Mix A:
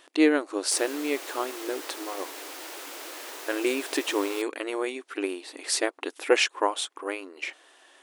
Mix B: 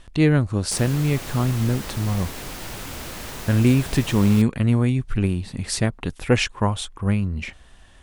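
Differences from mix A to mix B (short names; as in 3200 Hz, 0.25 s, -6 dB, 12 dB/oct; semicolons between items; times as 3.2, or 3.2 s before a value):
background +4.0 dB; master: remove brick-wall FIR high-pass 280 Hz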